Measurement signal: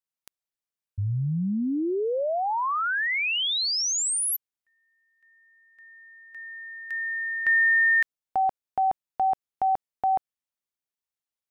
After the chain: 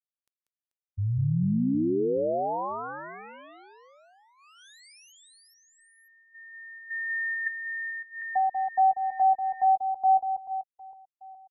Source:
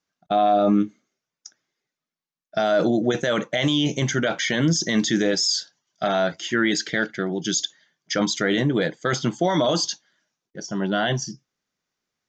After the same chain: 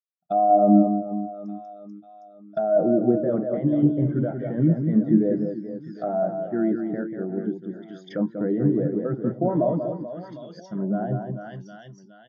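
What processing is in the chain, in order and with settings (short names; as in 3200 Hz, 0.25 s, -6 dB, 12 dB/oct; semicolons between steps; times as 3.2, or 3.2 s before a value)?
reverse bouncing-ball echo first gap 0.19 s, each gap 1.3×, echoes 5; treble ducked by the level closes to 890 Hz, closed at -20.5 dBFS; spectral expander 1.5:1; gain +1 dB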